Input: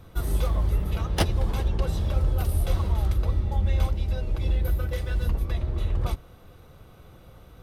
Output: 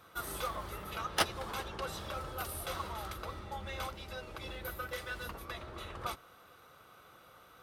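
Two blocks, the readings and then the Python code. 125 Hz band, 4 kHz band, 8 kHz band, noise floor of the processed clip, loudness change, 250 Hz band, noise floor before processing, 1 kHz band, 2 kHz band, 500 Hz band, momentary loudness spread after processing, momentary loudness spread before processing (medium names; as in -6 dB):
-22.5 dB, -1.5 dB, -1.5 dB, -59 dBFS, -12.5 dB, -13.0 dB, -50 dBFS, -0.5 dB, +0.5 dB, -7.5 dB, 22 LU, 3 LU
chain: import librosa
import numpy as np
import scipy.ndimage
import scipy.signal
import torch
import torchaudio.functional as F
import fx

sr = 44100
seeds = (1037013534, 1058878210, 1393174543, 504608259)

y = fx.highpass(x, sr, hz=890.0, slope=6)
y = fx.peak_eq(y, sr, hz=1300.0, db=7.5, octaves=0.54)
y = F.gain(torch.from_numpy(y), -1.5).numpy()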